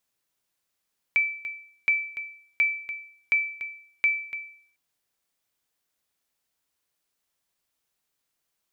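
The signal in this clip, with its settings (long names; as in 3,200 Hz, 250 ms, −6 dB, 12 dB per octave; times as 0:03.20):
ping with an echo 2,320 Hz, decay 0.57 s, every 0.72 s, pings 5, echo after 0.29 s, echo −12.5 dB −15 dBFS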